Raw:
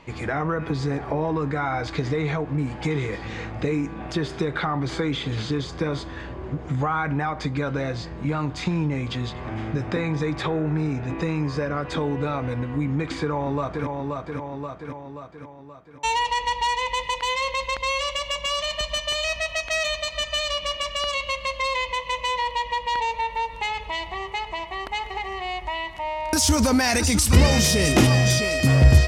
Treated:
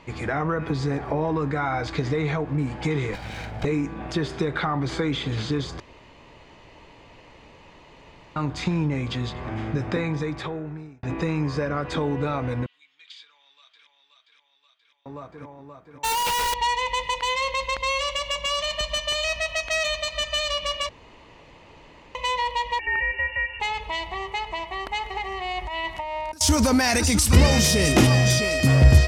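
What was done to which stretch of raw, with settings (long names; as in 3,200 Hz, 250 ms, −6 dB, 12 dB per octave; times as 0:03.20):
0:03.13–0:03.65: lower of the sound and its delayed copy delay 1.3 ms
0:05.80–0:08.36: fill with room tone
0:09.95–0:11.03: fade out
0:12.66–0:15.06: four-pole ladder band-pass 3,700 Hz, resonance 65%
0:16.04–0:16.54: sign of each sample alone
0:20.89–0:22.15: fill with room tone
0:22.79–0:23.60: voice inversion scrambler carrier 2,800 Hz
0:25.51–0:26.41: compressor whose output falls as the input rises −30 dBFS, ratio −0.5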